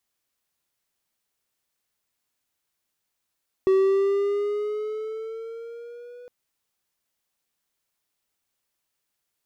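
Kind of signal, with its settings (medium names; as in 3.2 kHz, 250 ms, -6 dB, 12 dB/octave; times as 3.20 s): gliding synth tone triangle, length 2.61 s, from 380 Hz, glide +4.5 st, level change -26 dB, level -13 dB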